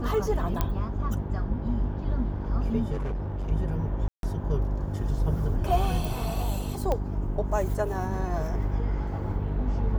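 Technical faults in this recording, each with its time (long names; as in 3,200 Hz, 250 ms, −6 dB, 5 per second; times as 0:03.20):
mains hum 50 Hz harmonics 8 −31 dBFS
0:00.61: click −12 dBFS
0:02.92–0:03.52: clipping −27 dBFS
0:04.08–0:04.23: drop-out 152 ms
0:06.92: click −15 dBFS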